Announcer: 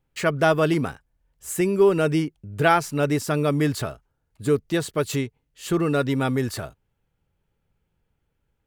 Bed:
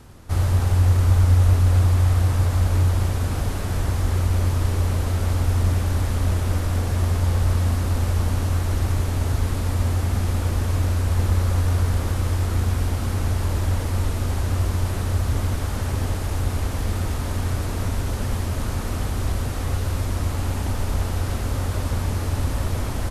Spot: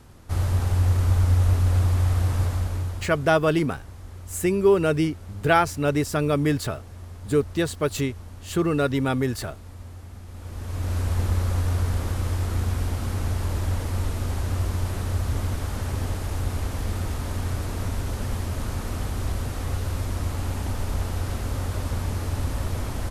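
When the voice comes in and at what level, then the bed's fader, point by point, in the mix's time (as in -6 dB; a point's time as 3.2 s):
2.85 s, -0.5 dB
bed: 2.44 s -3.5 dB
3.43 s -19 dB
10.27 s -19 dB
10.97 s -3.5 dB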